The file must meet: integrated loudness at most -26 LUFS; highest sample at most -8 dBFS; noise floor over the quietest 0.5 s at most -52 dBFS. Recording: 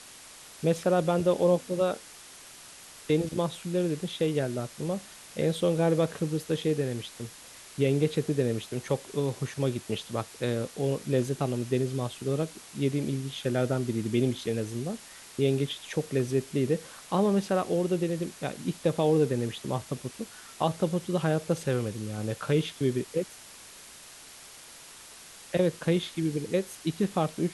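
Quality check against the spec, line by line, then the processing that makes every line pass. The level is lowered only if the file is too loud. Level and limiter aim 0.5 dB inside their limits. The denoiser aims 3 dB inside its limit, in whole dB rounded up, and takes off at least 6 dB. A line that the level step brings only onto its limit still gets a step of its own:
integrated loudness -29.0 LUFS: OK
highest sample -12.0 dBFS: OK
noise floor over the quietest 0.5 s -49 dBFS: fail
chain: denoiser 6 dB, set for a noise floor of -49 dBFS

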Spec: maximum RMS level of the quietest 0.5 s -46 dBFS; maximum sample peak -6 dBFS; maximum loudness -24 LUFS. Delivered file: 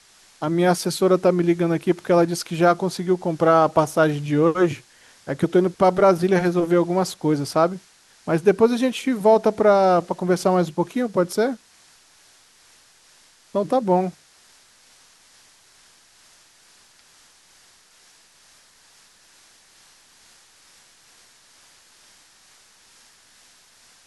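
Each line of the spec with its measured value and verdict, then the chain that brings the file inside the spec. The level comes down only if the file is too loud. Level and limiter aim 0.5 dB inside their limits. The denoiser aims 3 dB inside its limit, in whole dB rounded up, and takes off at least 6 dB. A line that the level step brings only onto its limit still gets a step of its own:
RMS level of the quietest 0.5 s -54 dBFS: OK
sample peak -4.5 dBFS: fail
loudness -20.0 LUFS: fail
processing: gain -4.5 dB

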